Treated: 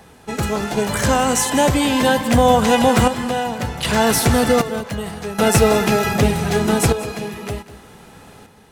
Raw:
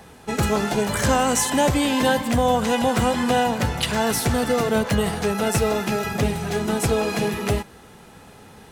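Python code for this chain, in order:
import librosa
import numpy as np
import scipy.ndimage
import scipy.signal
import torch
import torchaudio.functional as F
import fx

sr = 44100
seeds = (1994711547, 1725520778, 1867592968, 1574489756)

y = fx.tremolo_random(x, sr, seeds[0], hz=1.3, depth_pct=75)
y = y + 10.0 ** (-15.5 / 20.0) * np.pad(y, (int(194 * sr / 1000.0), 0))[:len(y)]
y = y * 10.0 ** (7.0 / 20.0)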